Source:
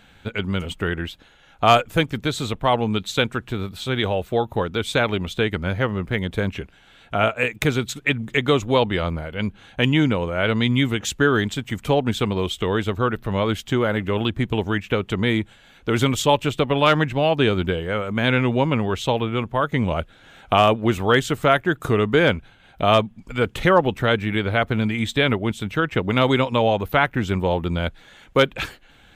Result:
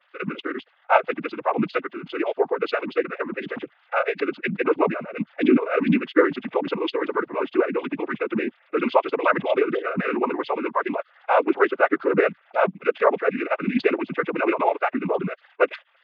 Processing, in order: formants replaced by sine waves; noise-vocoded speech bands 16; time stretch by phase-locked vocoder 0.55×

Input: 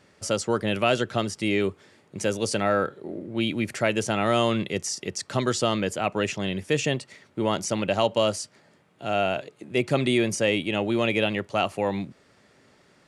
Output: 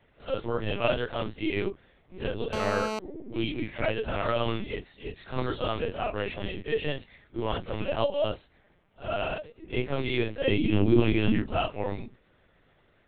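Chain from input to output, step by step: phase randomisation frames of 100 ms; 10.48–11.57 s: resonant low shelf 380 Hz +10 dB, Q 1.5; LPC vocoder at 8 kHz pitch kept; 2.53–2.99 s: mobile phone buzz -27 dBFS; trim -4.5 dB

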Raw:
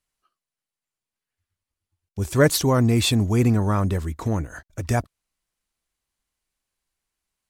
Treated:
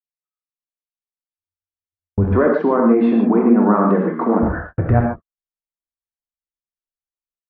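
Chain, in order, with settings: 2.33–4.43 s: steep high-pass 200 Hz 48 dB/octave; compression 10:1, threshold -25 dBFS, peak gain reduction 13.5 dB; low-pass 1.5 kHz 24 dB/octave; gated-style reverb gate 170 ms flat, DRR -0.5 dB; level rider gain up to 13.5 dB; gate -28 dBFS, range -38 dB

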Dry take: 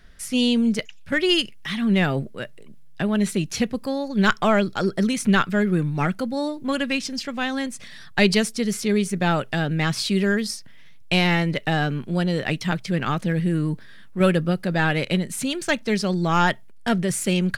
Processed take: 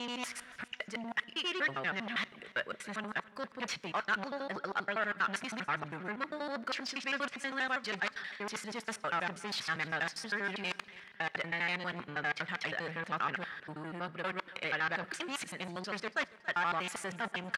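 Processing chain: slices played last to first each 80 ms, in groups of 7; reverse; compression 6:1, threshold -30 dBFS, peak gain reduction 16 dB; reverse; sine folder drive 13 dB, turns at -14 dBFS; band-pass filter 1.5 kHz, Q 1.1; feedback delay 280 ms, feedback 40%, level -20.5 dB; on a send at -21.5 dB: reverberation, pre-delay 3 ms; on the sum: trim -8.5 dB

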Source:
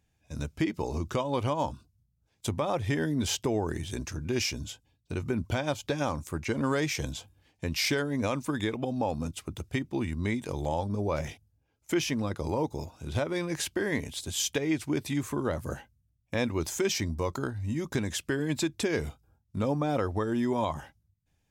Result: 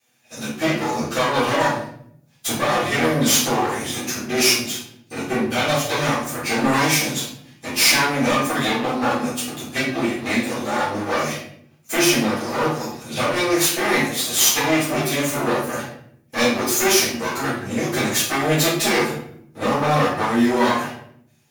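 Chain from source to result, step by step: comb filter that takes the minimum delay 8.3 ms; high-pass 160 Hz 12 dB/octave; tilt EQ +2 dB/octave; band-stop 7.9 kHz, Q 11; in parallel at -7.5 dB: saturation -25.5 dBFS, distortion -14 dB; on the sum: simulated room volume 120 m³, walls mixed, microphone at 3.8 m; trim -1.5 dB

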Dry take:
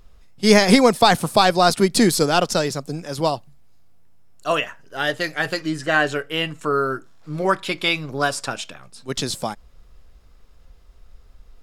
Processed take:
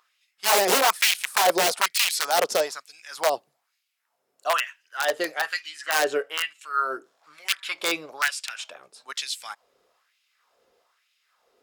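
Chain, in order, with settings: integer overflow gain 10 dB; LFO high-pass sine 1.1 Hz 400–2700 Hz; trim -5.5 dB

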